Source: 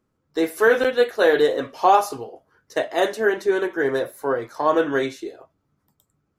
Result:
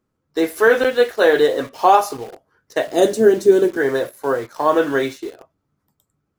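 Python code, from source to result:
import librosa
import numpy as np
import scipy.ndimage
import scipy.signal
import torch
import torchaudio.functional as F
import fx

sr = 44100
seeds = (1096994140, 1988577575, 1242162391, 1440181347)

p1 = fx.graphic_eq(x, sr, hz=(125, 250, 500, 1000, 2000, 8000), db=(12, 8, 4, -8, -8, 9), at=(2.87, 3.77))
p2 = fx.quant_dither(p1, sr, seeds[0], bits=6, dither='none')
p3 = p1 + (p2 * librosa.db_to_amplitude(-5.0))
y = p3 * librosa.db_to_amplitude(-1.0)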